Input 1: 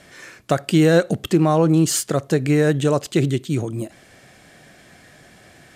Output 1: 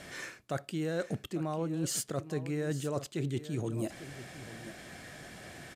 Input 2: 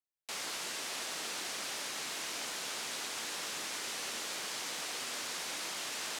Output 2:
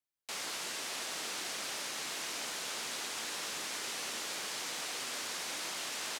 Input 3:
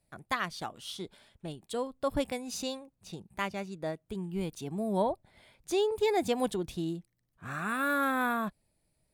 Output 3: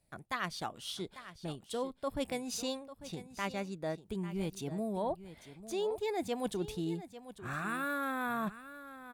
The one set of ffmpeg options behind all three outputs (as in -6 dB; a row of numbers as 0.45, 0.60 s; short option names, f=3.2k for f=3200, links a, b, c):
-af "areverse,acompressor=threshold=-31dB:ratio=12,areverse,aecho=1:1:846:0.2"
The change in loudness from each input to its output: -17.5, 0.0, -4.5 LU